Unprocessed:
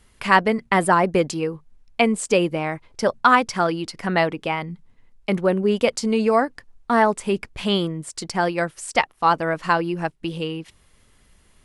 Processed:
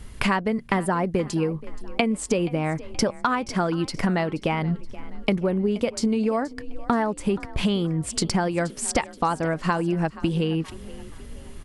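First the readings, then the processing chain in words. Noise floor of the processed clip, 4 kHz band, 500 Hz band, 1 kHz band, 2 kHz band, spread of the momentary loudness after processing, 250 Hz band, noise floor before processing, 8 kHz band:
-42 dBFS, -3.5 dB, -4.5 dB, -7.0 dB, -7.0 dB, 8 LU, 0.0 dB, -58 dBFS, +1.0 dB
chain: low shelf 330 Hz +10 dB; compressor 12:1, threshold -28 dBFS, peak gain reduction 20 dB; frequency-shifting echo 0.476 s, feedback 47%, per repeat +37 Hz, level -19 dB; gain +8 dB

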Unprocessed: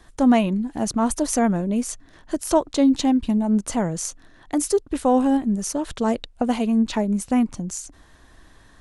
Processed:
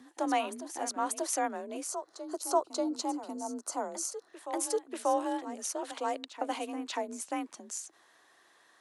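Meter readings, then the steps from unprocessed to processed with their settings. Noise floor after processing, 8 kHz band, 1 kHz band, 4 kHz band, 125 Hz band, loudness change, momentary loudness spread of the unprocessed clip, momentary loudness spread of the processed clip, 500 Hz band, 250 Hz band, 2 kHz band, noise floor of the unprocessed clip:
-64 dBFS, -6.5 dB, -6.0 dB, -7.5 dB, under -35 dB, -12.5 dB, 11 LU, 8 LU, -10.0 dB, -19.0 dB, -7.0 dB, -52 dBFS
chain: HPF 480 Hz 12 dB/oct; spectral gain 1.88–4.28, 1500–3900 Hz -11 dB; reverse echo 0.587 s -11 dB; frequency shift +38 Hz; gain -7 dB

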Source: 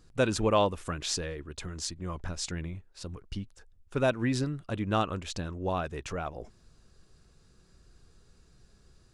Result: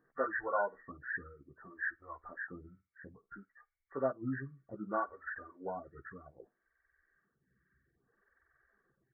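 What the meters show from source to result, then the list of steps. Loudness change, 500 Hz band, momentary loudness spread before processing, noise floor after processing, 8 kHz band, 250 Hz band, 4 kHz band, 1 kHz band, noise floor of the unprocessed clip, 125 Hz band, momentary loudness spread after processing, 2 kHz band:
-7.5 dB, -8.5 dB, 14 LU, -84 dBFS, under -40 dB, -11.5 dB, under -40 dB, -6.0 dB, -62 dBFS, -17.0 dB, 20 LU, -0.5 dB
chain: nonlinear frequency compression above 1100 Hz 4:1; low shelf 170 Hz -6.5 dB; doubler 15 ms -4 dB; flutter echo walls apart 9 m, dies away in 0.21 s; reverb removal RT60 1.6 s; HPF 89 Hz 6 dB/oct; photocell phaser 0.62 Hz; gain -6.5 dB

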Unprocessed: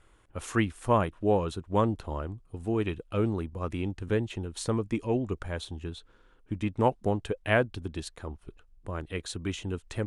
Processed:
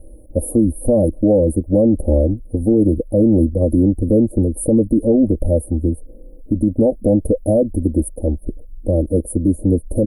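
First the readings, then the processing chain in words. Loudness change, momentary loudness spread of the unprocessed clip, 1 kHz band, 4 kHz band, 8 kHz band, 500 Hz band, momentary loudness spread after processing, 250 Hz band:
+14.0 dB, 13 LU, n/a, under -35 dB, +12.5 dB, +13.5 dB, 8 LU, +17.0 dB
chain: Chebyshev band-stop 650–9700 Hz, order 5; dynamic EQ 4300 Hz, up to +4 dB, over -56 dBFS, Q 0.81; comb 3.7 ms, depth 92%; maximiser +24 dB; gain -5 dB

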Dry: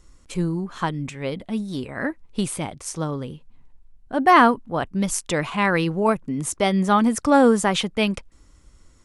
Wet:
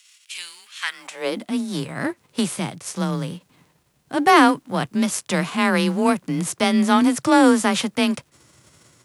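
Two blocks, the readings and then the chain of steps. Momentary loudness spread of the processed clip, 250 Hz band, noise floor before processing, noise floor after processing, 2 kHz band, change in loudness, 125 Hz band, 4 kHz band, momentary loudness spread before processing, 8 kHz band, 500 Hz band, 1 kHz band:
15 LU, +2.5 dB, -54 dBFS, -63 dBFS, +1.5 dB, +1.5 dB, -1.5 dB, +3.5 dB, 14 LU, +1.5 dB, -1.0 dB, -0.5 dB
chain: spectral whitening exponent 0.6; high-pass sweep 2700 Hz -> 110 Hz, 0.77–1.56; frequency shift +26 Hz

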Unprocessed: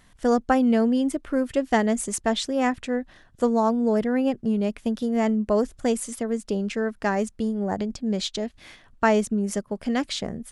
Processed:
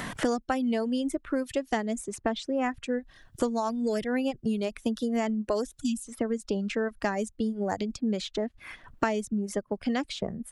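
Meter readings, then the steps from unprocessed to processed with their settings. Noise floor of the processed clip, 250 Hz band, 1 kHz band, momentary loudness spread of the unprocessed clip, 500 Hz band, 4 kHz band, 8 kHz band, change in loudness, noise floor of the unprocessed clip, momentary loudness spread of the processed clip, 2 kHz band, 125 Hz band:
-62 dBFS, -6.0 dB, -6.0 dB, 8 LU, -5.5 dB, -5.5 dB, -7.0 dB, -6.0 dB, -57 dBFS, 5 LU, -4.5 dB, -5.5 dB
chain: reverb removal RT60 1.4 s; spectral delete 5.81–6.07, 300–2500 Hz; three-band squash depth 100%; gain -4.5 dB

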